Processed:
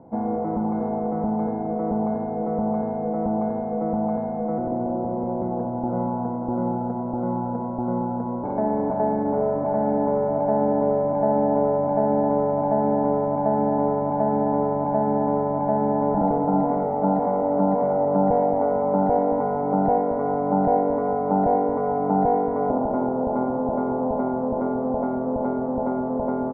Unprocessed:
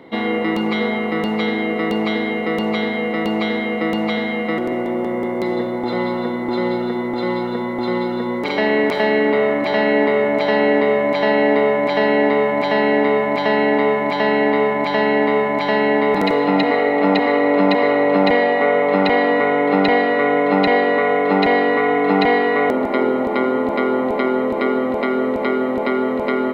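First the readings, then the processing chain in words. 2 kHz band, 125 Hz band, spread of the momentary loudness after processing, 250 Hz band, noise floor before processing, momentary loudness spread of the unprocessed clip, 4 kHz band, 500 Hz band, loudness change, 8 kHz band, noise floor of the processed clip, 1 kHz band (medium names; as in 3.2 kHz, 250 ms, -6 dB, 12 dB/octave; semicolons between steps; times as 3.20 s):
under -25 dB, +1.0 dB, 6 LU, -4.5 dB, -22 dBFS, 6 LU, under -40 dB, -6.0 dB, -5.5 dB, no reading, -27 dBFS, -3.5 dB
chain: inverse Chebyshev low-pass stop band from 2.6 kHz, stop band 50 dB; bass shelf 150 Hz +8 dB; comb 1.3 ms, depth 54%; two-band feedback delay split 570 Hz, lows 229 ms, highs 90 ms, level -8.5 dB; trim -5 dB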